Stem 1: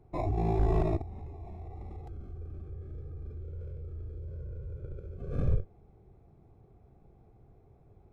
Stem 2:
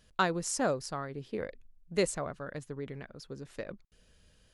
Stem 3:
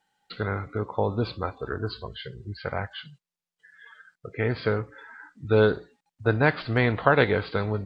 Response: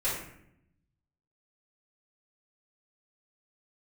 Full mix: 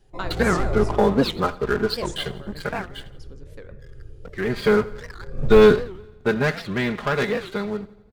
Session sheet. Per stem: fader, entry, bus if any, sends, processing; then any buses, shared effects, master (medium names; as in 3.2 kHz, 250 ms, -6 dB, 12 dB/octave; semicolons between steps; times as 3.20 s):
-7.0 dB, 0.00 s, send -3.5 dB, no echo send, none
-5.0 dB, 0.00 s, send -16 dB, no echo send, none
2.45 s -3 dB -> 2.96 s -12.5 dB -> 4.38 s -12.5 dB -> 4.78 s -2 dB -> 6.00 s -2 dB -> 6.57 s -11.5 dB, 0.00 s, no send, echo send -19 dB, peaking EQ 710 Hz -3.5 dB 1.7 oct; comb 4.9 ms, depth 98%; waveshaping leveller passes 3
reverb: on, RT60 0.75 s, pre-delay 3 ms
echo: feedback delay 84 ms, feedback 54%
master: warped record 78 rpm, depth 250 cents